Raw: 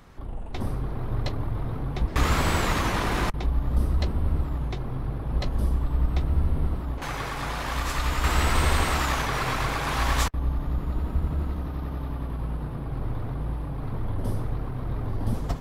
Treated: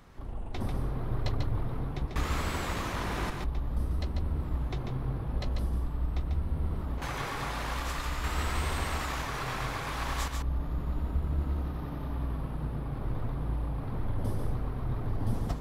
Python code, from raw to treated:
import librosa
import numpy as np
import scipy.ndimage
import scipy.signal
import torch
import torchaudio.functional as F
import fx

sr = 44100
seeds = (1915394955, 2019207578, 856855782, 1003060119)

p1 = fx.rider(x, sr, range_db=3, speed_s=0.5)
p2 = p1 + fx.echo_single(p1, sr, ms=143, db=-5.0, dry=0)
y = p2 * librosa.db_to_amplitude(-7.0)